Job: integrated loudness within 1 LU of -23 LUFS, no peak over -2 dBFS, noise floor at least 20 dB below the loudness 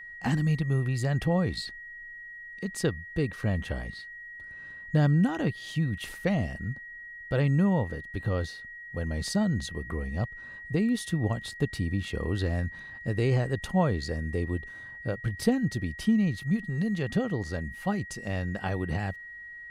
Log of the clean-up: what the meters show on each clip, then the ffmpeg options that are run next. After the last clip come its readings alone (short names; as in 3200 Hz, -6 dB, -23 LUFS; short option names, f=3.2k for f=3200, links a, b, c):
steady tone 1900 Hz; tone level -41 dBFS; loudness -29.5 LUFS; peak -10.5 dBFS; loudness target -23.0 LUFS
-> -af "bandreject=f=1.9k:w=30"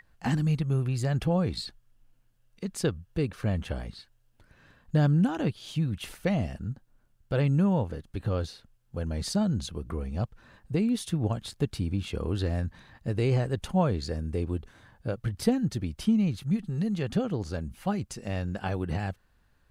steady tone none; loudness -29.5 LUFS; peak -10.5 dBFS; loudness target -23.0 LUFS
-> -af "volume=6.5dB"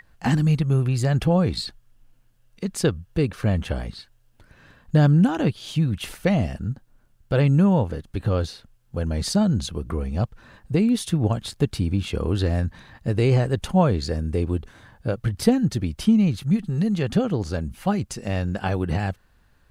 loudness -23.0 LUFS; peak -4.0 dBFS; noise floor -59 dBFS